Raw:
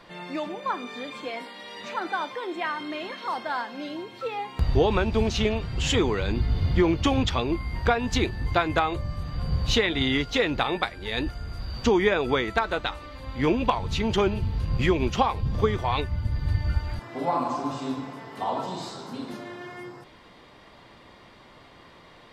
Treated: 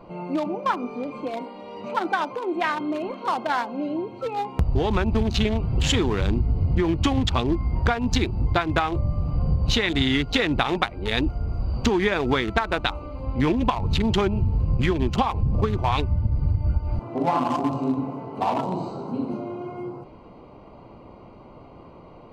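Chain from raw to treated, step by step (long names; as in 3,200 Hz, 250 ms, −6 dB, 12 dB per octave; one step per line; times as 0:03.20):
adaptive Wiener filter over 25 samples
dynamic equaliser 500 Hz, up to −6 dB, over −38 dBFS, Q 2
downward compressor, threshold −26 dBFS, peak gain reduction 9.5 dB
level +8.5 dB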